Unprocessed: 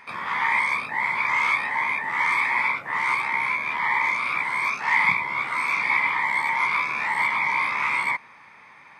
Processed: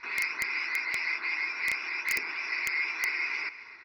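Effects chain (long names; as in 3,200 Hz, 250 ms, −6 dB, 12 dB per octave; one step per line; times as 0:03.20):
in parallel at −1 dB: downward compressor 20 to 1, threshold −35 dBFS, peak gain reduction 20.5 dB
on the sum: hum removal 60.97 Hz, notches 7
wrong playback speed 33 rpm record played at 78 rpm
low-pass filter 2,800 Hz 24 dB per octave
parametric band 180 Hz −9 dB 0.56 octaves
phaser with its sweep stopped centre 1,300 Hz, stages 4
comb filter 2 ms, depth 43%
single-tap delay 270 ms −18.5 dB
on a send at −17 dB: convolution reverb RT60 0.50 s, pre-delay 121 ms
on the sum: wrap-around overflow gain 22 dB
level +2.5 dB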